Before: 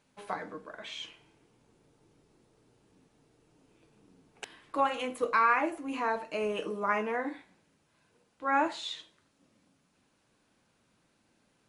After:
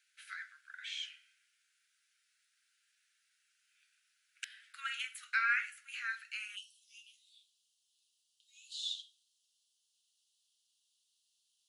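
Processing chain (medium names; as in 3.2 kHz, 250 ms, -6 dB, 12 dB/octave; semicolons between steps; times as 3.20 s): steep high-pass 1.4 kHz 96 dB/octave, from 6.55 s 2.9 kHz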